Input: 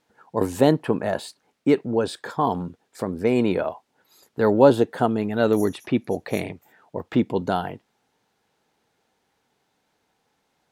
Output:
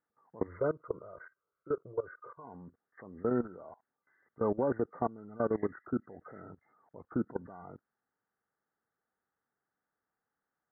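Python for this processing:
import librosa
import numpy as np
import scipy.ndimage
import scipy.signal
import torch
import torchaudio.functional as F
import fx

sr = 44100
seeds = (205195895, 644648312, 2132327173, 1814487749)

y = fx.freq_compress(x, sr, knee_hz=1100.0, ratio=4.0)
y = fx.fixed_phaser(y, sr, hz=1200.0, stages=8, at=(0.46, 2.43), fade=0.02)
y = fx.level_steps(y, sr, step_db=20)
y = scipy.signal.sosfilt(scipy.signal.butter(4, 1700.0, 'lowpass', fs=sr, output='sos'), y)
y = F.gain(torch.from_numpy(y), -8.5).numpy()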